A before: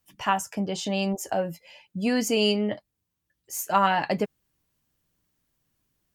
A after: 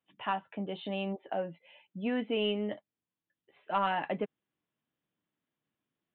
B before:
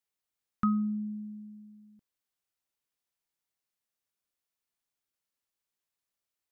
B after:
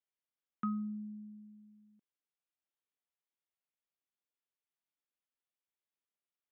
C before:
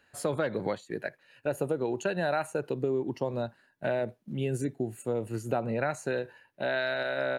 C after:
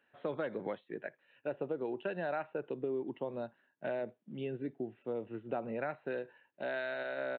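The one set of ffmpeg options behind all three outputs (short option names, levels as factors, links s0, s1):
-af "highpass=220,lowshelf=f=380:g=4,asoftclip=type=tanh:threshold=0.355,aresample=8000,aresample=44100,volume=0.398"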